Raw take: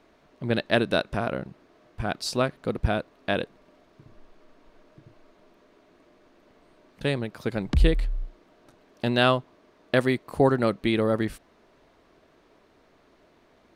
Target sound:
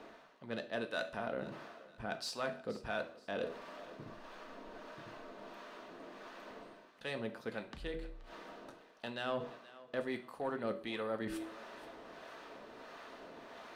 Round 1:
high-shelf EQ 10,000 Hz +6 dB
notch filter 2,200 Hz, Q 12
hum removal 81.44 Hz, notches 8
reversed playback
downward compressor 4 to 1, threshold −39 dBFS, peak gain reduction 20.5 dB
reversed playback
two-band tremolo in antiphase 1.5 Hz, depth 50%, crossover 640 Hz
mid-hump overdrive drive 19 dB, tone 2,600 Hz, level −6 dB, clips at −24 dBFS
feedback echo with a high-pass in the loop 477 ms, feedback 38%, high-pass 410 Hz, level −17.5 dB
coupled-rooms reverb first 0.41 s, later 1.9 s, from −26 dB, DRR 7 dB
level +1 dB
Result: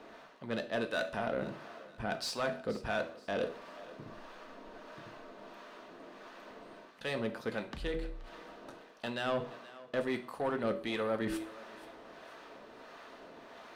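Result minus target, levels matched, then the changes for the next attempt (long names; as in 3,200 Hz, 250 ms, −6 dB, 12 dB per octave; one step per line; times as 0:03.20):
downward compressor: peak gain reduction −6.5 dB
change: downward compressor 4 to 1, threshold −47.5 dBFS, peak gain reduction 27 dB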